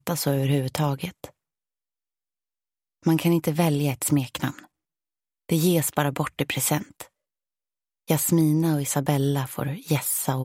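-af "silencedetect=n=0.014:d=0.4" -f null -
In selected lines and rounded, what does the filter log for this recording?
silence_start: 1.26
silence_end: 3.06 | silence_duration: 1.80
silence_start: 4.59
silence_end: 5.49 | silence_duration: 0.90
silence_start: 7.03
silence_end: 8.09 | silence_duration: 1.06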